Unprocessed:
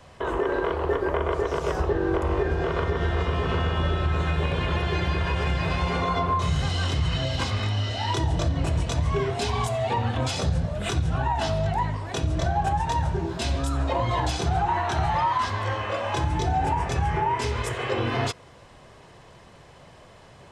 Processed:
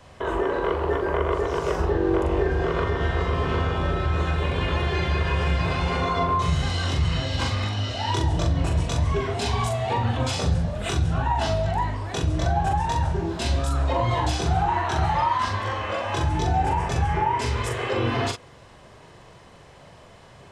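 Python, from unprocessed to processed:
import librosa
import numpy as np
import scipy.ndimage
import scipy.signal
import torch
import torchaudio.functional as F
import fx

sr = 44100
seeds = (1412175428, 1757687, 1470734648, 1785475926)

y = fx.doubler(x, sr, ms=42.0, db=-5.0)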